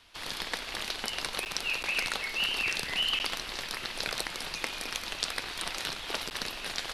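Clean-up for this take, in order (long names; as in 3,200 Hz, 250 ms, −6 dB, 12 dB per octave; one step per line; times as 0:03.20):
repair the gap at 0:01.45/0:01.83/0:03.19/0:06.30, 9.5 ms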